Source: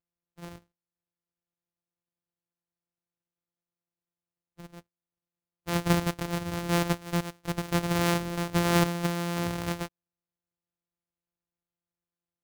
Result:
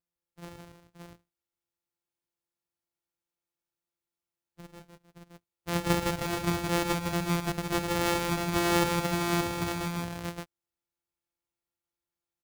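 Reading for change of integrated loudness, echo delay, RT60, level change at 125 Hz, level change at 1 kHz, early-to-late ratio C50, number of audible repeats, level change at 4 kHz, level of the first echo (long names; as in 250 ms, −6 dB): −0.5 dB, 50 ms, no reverb audible, −3.0 dB, +1.5 dB, no reverb audible, 4, +1.0 dB, −12.5 dB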